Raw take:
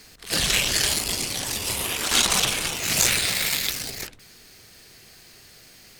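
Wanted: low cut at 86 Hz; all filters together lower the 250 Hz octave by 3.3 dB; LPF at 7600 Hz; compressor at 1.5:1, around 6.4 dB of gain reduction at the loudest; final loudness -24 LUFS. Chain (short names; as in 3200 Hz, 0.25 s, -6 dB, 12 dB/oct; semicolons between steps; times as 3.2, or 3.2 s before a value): HPF 86 Hz; LPF 7600 Hz; bell 250 Hz -4.5 dB; compressor 1.5:1, threshold -35 dBFS; gain +4.5 dB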